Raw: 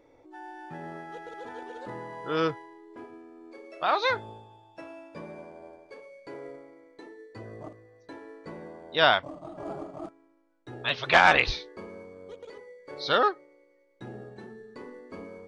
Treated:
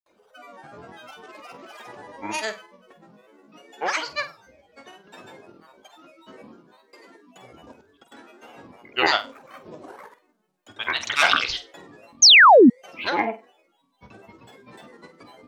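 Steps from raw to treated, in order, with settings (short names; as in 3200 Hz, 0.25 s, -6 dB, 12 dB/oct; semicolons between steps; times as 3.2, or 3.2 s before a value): tilt +3 dB/oct; grains, pitch spread up and down by 12 st; flutter echo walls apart 8.2 m, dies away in 0.25 s; painted sound fall, 12.22–12.7, 210–6800 Hz -10 dBFS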